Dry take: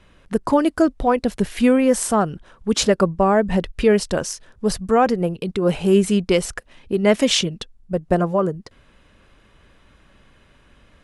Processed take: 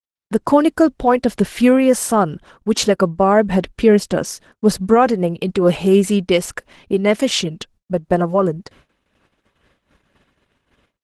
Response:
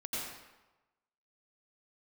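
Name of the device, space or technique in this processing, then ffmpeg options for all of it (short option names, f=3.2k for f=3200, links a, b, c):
video call: -filter_complex "[0:a]asplit=3[a][b][c];[a]afade=t=out:st=3.62:d=0.02[d];[b]adynamicequalizer=threshold=0.0316:dfrequency=240:dqfactor=0.84:tfrequency=240:tqfactor=0.84:attack=5:release=100:ratio=0.375:range=3:mode=boostabove:tftype=bell,afade=t=in:st=3.62:d=0.02,afade=t=out:st=4.93:d=0.02[e];[c]afade=t=in:st=4.93:d=0.02[f];[d][e][f]amix=inputs=3:normalize=0,highpass=f=100:p=1,dynaudnorm=f=160:g=3:m=9dB,agate=range=-49dB:threshold=-44dB:ratio=16:detection=peak,volume=-1dB" -ar 48000 -c:a libopus -b:a 16k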